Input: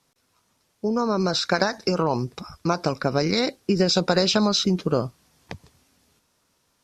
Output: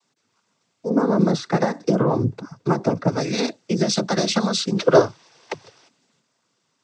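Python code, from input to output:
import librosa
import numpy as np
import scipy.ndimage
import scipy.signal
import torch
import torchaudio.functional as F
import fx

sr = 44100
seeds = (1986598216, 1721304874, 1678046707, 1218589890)

y = fx.tilt_shelf(x, sr, db=8.0, hz=1100.0, at=(0.89, 3.07))
y = fx.spec_box(y, sr, start_s=4.75, length_s=1.13, low_hz=330.0, high_hz=6100.0, gain_db=12)
y = fx.noise_vocoder(y, sr, seeds[0], bands=16)
y = y * 10.0 ** (-1.0 / 20.0)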